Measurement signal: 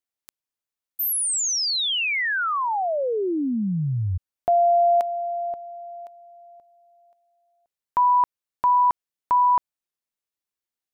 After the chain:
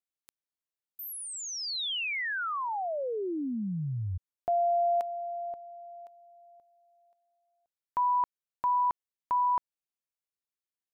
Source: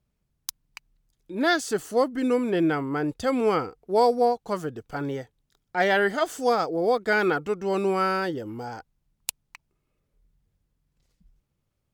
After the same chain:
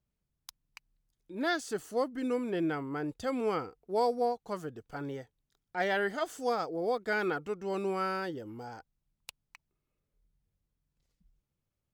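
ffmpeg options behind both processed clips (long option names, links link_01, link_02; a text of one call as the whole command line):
ffmpeg -i in.wav -filter_complex "[0:a]acrossover=split=4200[link_01][link_02];[link_02]acompressor=threshold=-31dB:ratio=4:attack=1:release=60[link_03];[link_01][link_03]amix=inputs=2:normalize=0,volume=-8.5dB" out.wav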